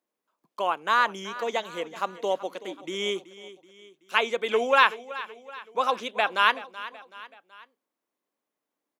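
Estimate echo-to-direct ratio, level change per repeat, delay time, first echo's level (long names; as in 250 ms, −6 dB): −15.5 dB, −6.0 dB, 378 ms, −16.5 dB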